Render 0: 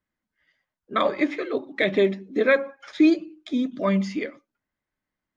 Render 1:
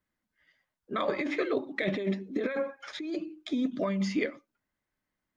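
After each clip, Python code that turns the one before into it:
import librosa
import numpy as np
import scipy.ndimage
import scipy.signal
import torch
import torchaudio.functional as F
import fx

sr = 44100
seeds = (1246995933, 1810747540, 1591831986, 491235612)

y = fx.over_compress(x, sr, threshold_db=-25.0, ratio=-1.0)
y = y * 10.0 ** (-4.0 / 20.0)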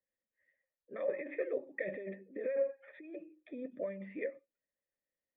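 y = fx.formant_cascade(x, sr, vowel='e')
y = y * 10.0 ** (1.5 / 20.0)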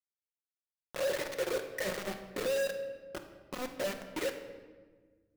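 y = fx.quant_companded(x, sr, bits=2)
y = fx.room_shoebox(y, sr, seeds[0], volume_m3=1300.0, walls='mixed', distance_m=0.96)
y = y * 10.0 ** (-5.5 / 20.0)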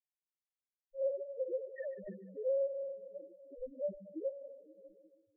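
y = fx.spec_topn(x, sr, count=1)
y = fx.echo_stepped(y, sr, ms=147, hz=2600.0, octaves=-0.7, feedback_pct=70, wet_db=-10.5)
y = y * 10.0 ** (4.5 / 20.0)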